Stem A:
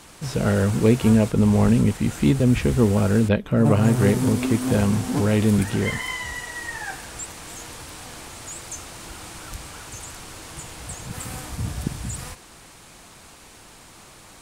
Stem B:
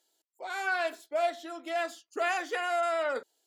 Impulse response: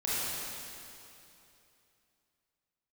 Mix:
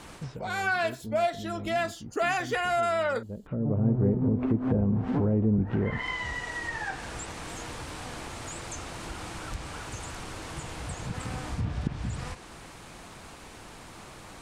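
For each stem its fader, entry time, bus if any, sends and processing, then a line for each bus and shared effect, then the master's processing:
+2.5 dB, 0.00 s, no send, treble ducked by the level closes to 540 Hz, closed at -15.5 dBFS; high shelf 3900 Hz -9 dB; auto duck -21 dB, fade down 0.25 s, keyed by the second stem
+2.5 dB, 0.00 s, no send, AGC gain up to 6.5 dB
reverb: off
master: compressor 1.5:1, threshold -35 dBFS, peak gain reduction 8.5 dB

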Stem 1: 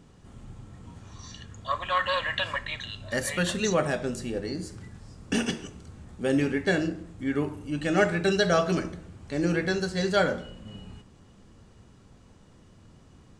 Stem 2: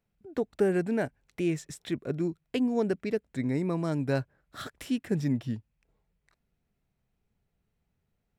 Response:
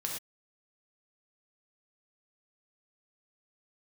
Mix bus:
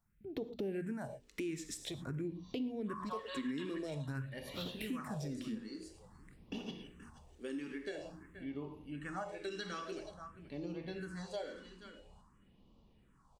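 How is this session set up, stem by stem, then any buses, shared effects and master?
-16.0 dB, 1.20 s, send -4 dB, echo send -12.5 dB, fifteen-band EQ 100 Hz -10 dB, 1000 Hz +10 dB, 6300 Hz -4 dB
-0.5 dB, 0.00 s, send -6.5 dB, no echo send, limiter -22 dBFS, peak gain reduction 7.5 dB; notches 60/120/180/240 Hz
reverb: on, pre-delay 3 ms
echo: echo 0.477 s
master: phaser stages 4, 0.49 Hz, lowest notch 110–1600 Hz; compressor 3:1, threshold -40 dBFS, peak gain reduction 13 dB

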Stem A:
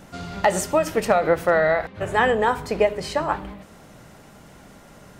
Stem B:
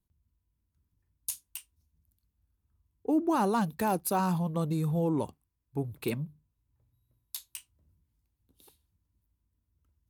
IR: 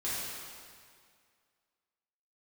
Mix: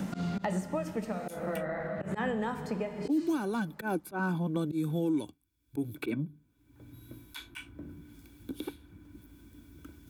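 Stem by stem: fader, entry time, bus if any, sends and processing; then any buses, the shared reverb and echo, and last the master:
-17.5 dB, 0.00 s, send -17 dB, bell 200 Hz +14.5 dB 0.9 oct; auto duck -18 dB, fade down 0.40 s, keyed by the second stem
-5.5 dB, 0.00 s, no send, small resonant body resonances 300/1500/2300/3400 Hz, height 16 dB, ringing for 40 ms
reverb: on, RT60 2.1 s, pre-delay 3 ms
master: auto swell 0.14 s; three-band squash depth 100%

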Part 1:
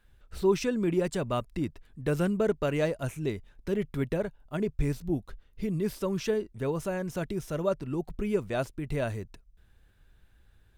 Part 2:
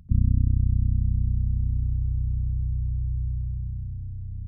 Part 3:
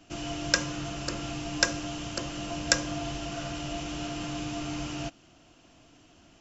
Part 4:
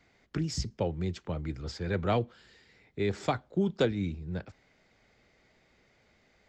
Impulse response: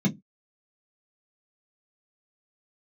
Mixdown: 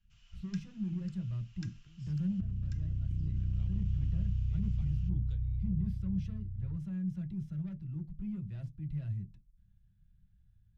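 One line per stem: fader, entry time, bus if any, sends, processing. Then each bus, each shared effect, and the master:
-5.0 dB, 0.00 s, send -12 dB, low shelf 81 Hz -3.5 dB; soft clip -27 dBFS, distortion -11 dB
-6.5 dB, 2.30 s, send -17.5 dB, resonator 100 Hz, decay 0.19 s, harmonics all, mix 30%
-11.5 dB, 0.00 s, no send, HPF 1100 Hz 24 dB/oct
-18.0 dB, 1.50 s, no send, high shelf 3600 Hz +9 dB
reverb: on, pre-delay 3 ms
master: EQ curve 110 Hz 0 dB, 250 Hz -24 dB, 650 Hz -25 dB, 3100 Hz -15 dB, 11000 Hz -26 dB; negative-ratio compressor -31 dBFS, ratio -1

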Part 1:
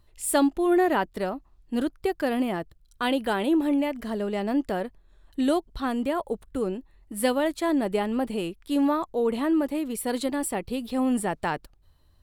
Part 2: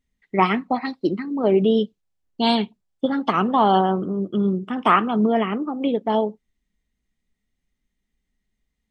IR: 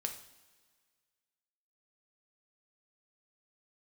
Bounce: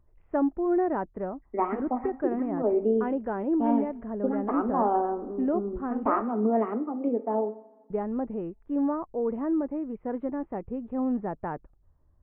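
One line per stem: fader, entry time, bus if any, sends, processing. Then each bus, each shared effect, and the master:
-3.0 dB, 0.00 s, muted 6.27–7.9, no send, dry
-2.0 dB, 1.20 s, send -8 dB, elliptic high-pass 230 Hz; auto duck -10 dB, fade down 1.25 s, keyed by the first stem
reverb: on, pre-delay 3 ms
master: Gaussian blur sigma 6.3 samples

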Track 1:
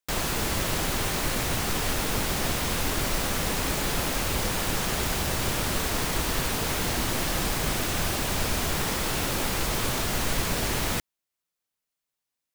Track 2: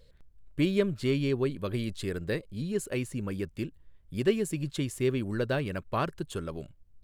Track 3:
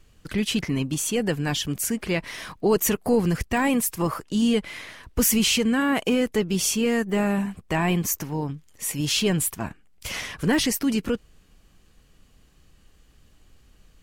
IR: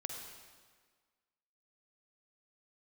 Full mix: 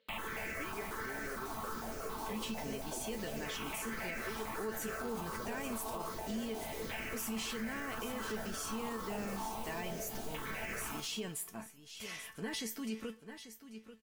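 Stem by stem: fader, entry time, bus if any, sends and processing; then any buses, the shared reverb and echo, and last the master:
+2.0 dB, 0.00 s, bus A, send -8.5 dB, no echo send, step phaser 11 Hz 510–3600 Hz
0.0 dB, 0.00 s, bus A, no send, no echo send, HPF 210 Hz 24 dB/oct
-6.0 dB, 1.95 s, no bus, send -20 dB, echo send -12.5 dB, dry
bus A: 0.0 dB, LFO low-pass saw down 0.29 Hz 630–2900 Hz; compressor 2.5:1, threshold -30 dBFS, peak gain reduction 9 dB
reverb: on, RT60 1.6 s, pre-delay 44 ms
echo: feedback echo 0.839 s, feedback 17%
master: low shelf 190 Hz -10.5 dB; resonator 220 Hz, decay 0.2 s, harmonics all, mix 80%; limiter -30.5 dBFS, peak gain reduction 10 dB

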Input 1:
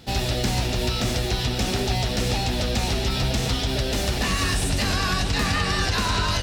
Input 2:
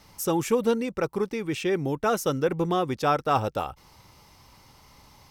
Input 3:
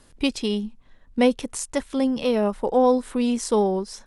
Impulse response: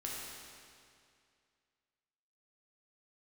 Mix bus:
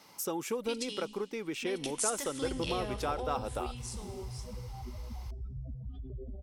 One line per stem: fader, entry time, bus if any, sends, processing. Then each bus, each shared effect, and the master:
-18.5 dB, 2.35 s, send -19 dB, spectral contrast raised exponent 3.6; LFO low-pass saw up 1.6 Hz 360–2100 Hz
-1.5 dB, 0.00 s, no send, HPF 240 Hz 12 dB/oct; notch 1800 Hz, Q 23; compressor 2.5:1, threshold -34 dBFS, peak gain reduction 11 dB
1.59 s -10 dB -> 1.82 s -2.5 dB -> 3.15 s -2.5 dB -> 3.79 s -13.5 dB, 0.45 s, send -13.5 dB, limiter -17.5 dBFS, peak gain reduction 10 dB; tilt shelf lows -9 dB, about 1300 Hz; auto duck -8 dB, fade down 1.70 s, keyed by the second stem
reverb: on, RT60 2.3 s, pre-delay 6 ms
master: dry

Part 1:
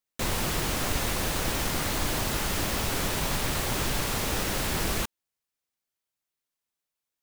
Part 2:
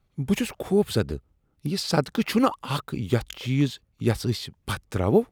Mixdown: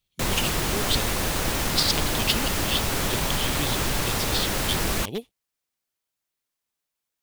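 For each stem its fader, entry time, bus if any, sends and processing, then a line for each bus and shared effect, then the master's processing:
+3.0 dB, 0.00 s, no send, dry
-9.0 dB, 0.00 s, no send, one-sided fold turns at -12 dBFS; resonant high shelf 2100 Hz +13.5 dB, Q 3; upward expander 1.5:1, over -25 dBFS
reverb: off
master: dry

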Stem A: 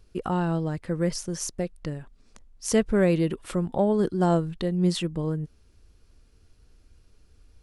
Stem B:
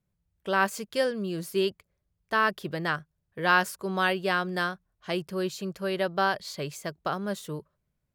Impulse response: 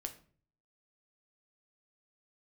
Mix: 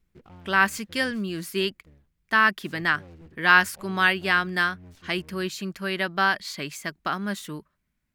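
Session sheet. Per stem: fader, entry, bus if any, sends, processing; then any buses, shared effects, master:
-18.5 dB, 0.00 s, send -19.5 dB, octaver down 1 oct, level +3 dB; hard clip -16 dBFS, distortion -13 dB; noise-modulated delay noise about 1500 Hz, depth 0.055 ms; auto duck -10 dB, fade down 0.45 s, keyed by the second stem
+3.0 dB, 0.00 s, no send, graphic EQ 125/250/500/2000 Hz -9/+7/-11/+7 dB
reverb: on, RT60 0.45 s, pre-delay 6 ms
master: dry

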